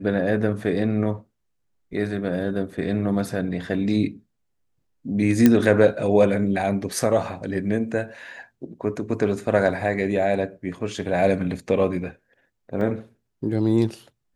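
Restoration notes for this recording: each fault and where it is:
5.46 s: pop -3 dBFS
12.81 s: dropout 2.2 ms

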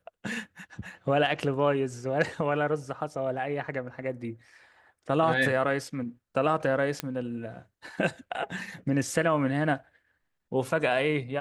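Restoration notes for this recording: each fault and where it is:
7.00 s: pop -13 dBFS

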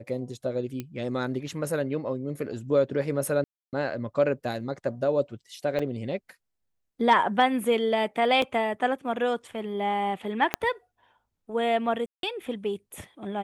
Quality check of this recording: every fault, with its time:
0.80 s: pop -19 dBFS
3.44–3.73 s: dropout 288 ms
5.79 s: dropout 4.8 ms
8.42 s: dropout 2.8 ms
10.54 s: pop -7 dBFS
12.06–12.23 s: dropout 172 ms

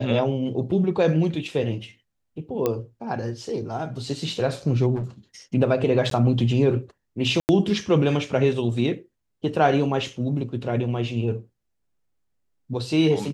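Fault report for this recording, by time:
2.66 s: pop -10 dBFS
4.95–5.05 s: clipped -25 dBFS
6.10–6.11 s: dropout 13 ms
7.40–7.49 s: dropout 89 ms

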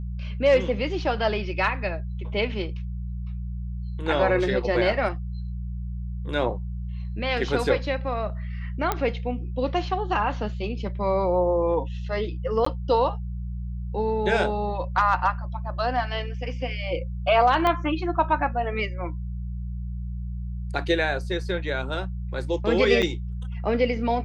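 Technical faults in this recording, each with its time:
hum 60 Hz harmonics 3 -31 dBFS
8.92 s: pop -9 dBFS
12.65–12.66 s: dropout 14 ms
17.67 s: pop -11 dBFS
23.02–23.03 s: dropout 6 ms

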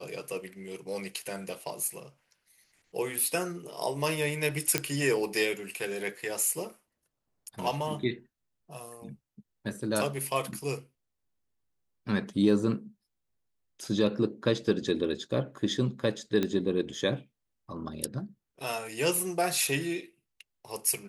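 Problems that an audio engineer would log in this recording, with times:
4.78 s: pop -7 dBFS
16.43 s: pop -15 dBFS

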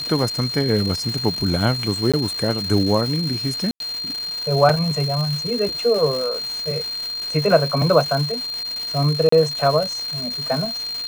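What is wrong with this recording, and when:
crackle 460 per s -25 dBFS
whine 4.2 kHz -25 dBFS
2.12–2.14 s: dropout 16 ms
3.71–3.80 s: dropout 92 ms
9.29–9.32 s: dropout 34 ms

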